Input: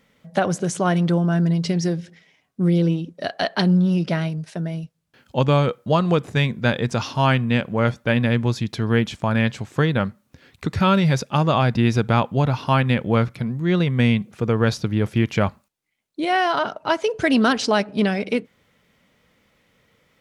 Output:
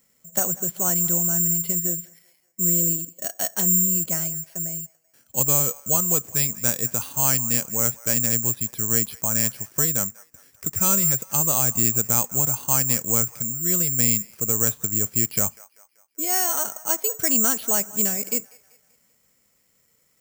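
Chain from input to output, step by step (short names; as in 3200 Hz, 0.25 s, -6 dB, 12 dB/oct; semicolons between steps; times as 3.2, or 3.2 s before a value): on a send: band-limited delay 0.193 s, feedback 48%, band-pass 1300 Hz, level -19 dB; on the sum: careless resampling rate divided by 6×, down filtered, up zero stuff; gain -10.5 dB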